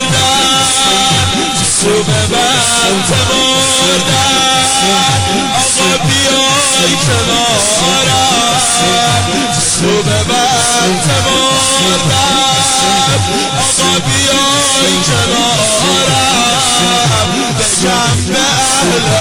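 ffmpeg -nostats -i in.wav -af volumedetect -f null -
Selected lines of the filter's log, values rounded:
mean_volume: -10.4 dB
max_volume: -4.9 dB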